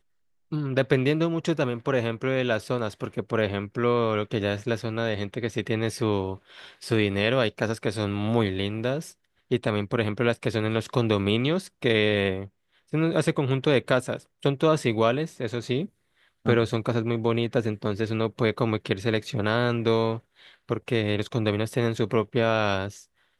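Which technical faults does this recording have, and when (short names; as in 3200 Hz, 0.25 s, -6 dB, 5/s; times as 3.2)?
4.82 gap 3 ms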